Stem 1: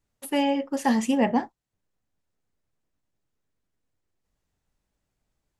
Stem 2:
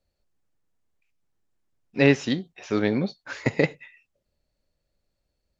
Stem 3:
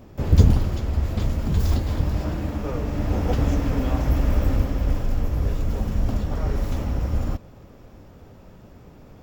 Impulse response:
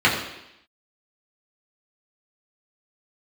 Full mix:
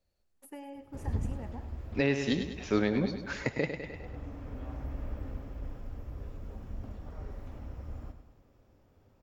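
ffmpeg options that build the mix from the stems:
-filter_complex "[0:a]equalizer=f=3.6k:w=1.4:g=-10,acompressor=threshold=-26dB:ratio=6,adelay=200,volume=-15.5dB,asplit=2[a][b];[b]volume=-13.5dB[c];[1:a]volume=-2.5dB,asplit=3[d][e][f];[e]volume=-10dB[g];[2:a]acrossover=split=2700[h][i];[i]acompressor=threshold=-54dB:ratio=4:attack=1:release=60[j];[h][j]amix=inputs=2:normalize=0,equalizer=f=170:t=o:w=0.41:g=-4.5,adelay=750,volume=-18dB,asplit=2[k][l];[l]volume=-9.5dB[m];[f]apad=whole_len=440020[n];[k][n]sidechaincompress=threshold=-28dB:ratio=8:attack=42:release=1320[o];[c][g][m]amix=inputs=3:normalize=0,aecho=0:1:101|202|303|404|505|606|707:1|0.49|0.24|0.118|0.0576|0.0282|0.0138[p];[a][d][o][p]amix=inputs=4:normalize=0,alimiter=limit=-15.5dB:level=0:latency=1:release=313"

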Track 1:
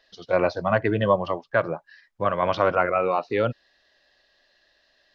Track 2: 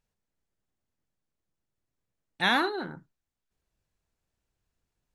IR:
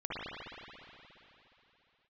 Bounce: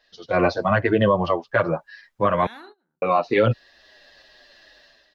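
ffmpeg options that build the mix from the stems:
-filter_complex "[0:a]dynaudnorm=f=100:g=7:m=12dB,asplit=2[a][b];[b]adelay=8,afreqshift=-2.5[c];[a][c]amix=inputs=2:normalize=1,volume=3dB,asplit=3[d][e][f];[d]atrim=end=2.47,asetpts=PTS-STARTPTS,afade=t=out:st=2.466:d=0.004:c=hsin[g];[e]atrim=start=2.47:end=3.02,asetpts=PTS-STARTPTS,volume=0[h];[f]atrim=start=3.02,asetpts=PTS-STARTPTS,afade=t=in:d=0.004:c=hsin[i];[g][h][i]concat=n=3:v=0:a=1,asplit=2[j][k];[1:a]bandreject=f=125.5:t=h:w=4,bandreject=f=251:t=h:w=4,bandreject=f=376.5:t=h:w=4,bandreject=f=502:t=h:w=4,bandreject=f=627.5:t=h:w=4,bandreject=f=753:t=h:w=4,bandreject=f=878.5:t=h:w=4,bandreject=f=1.004k:t=h:w=4,bandreject=f=1.1295k:t=h:w=4,bandreject=f=1.255k:t=h:w=4,bandreject=f=1.3805k:t=h:w=4,acompressor=threshold=-33dB:ratio=2,volume=-10dB[l];[k]apad=whole_len=227028[m];[l][m]sidechaingate=range=-27dB:threshold=-52dB:ratio=16:detection=peak[n];[j][n]amix=inputs=2:normalize=0,alimiter=limit=-8dB:level=0:latency=1:release=71"

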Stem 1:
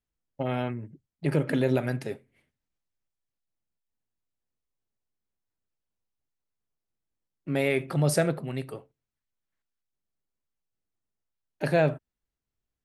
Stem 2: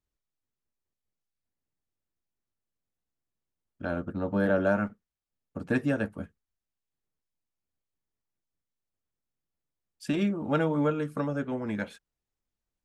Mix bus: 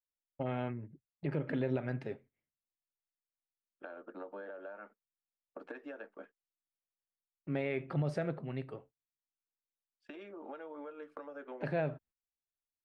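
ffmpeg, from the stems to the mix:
-filter_complex "[0:a]volume=-6.5dB,asplit=2[a][b];[1:a]highpass=f=360:w=0.5412,highpass=f=360:w=1.3066,alimiter=limit=-23dB:level=0:latency=1:release=324,acompressor=threshold=-40dB:ratio=20,volume=-2dB[c];[b]apad=whole_len=566384[d];[c][d]sidechaincompress=threshold=-48dB:ratio=8:attack=40:release=1490[e];[a][e]amix=inputs=2:normalize=0,lowpass=2.7k,agate=range=-15dB:threshold=-57dB:ratio=16:detection=peak,alimiter=limit=-24dB:level=0:latency=1:release=191"

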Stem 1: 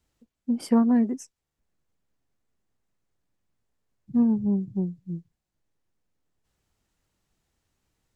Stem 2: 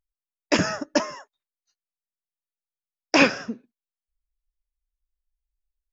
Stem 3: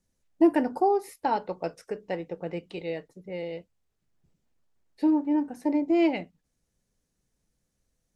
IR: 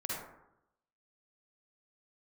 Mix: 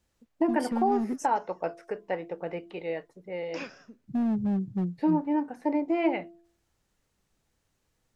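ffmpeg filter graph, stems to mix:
-filter_complex "[0:a]alimiter=limit=-18.5dB:level=0:latency=1:release=85,asoftclip=type=hard:threshold=-23dB,volume=-0.5dB[a];[1:a]adelay=400,volume=-17.5dB[b];[2:a]bandreject=f=340.4:t=h:w=4,bandreject=f=680.8:t=h:w=4,bandreject=f=1.0212k:t=h:w=4,acrossover=split=2800[c][d];[d]acompressor=threshold=-57dB:ratio=4:attack=1:release=60[e];[c][e]amix=inputs=2:normalize=0,equalizer=f=1.2k:w=0.34:g=10.5,volume=-6.5dB,asplit=2[f][g];[g]apad=whole_len=278997[h];[b][h]sidechaincompress=threshold=-38dB:ratio=3:attack=16:release=664[i];[a][i][f]amix=inputs=3:normalize=0,alimiter=limit=-15.5dB:level=0:latency=1:release=354"

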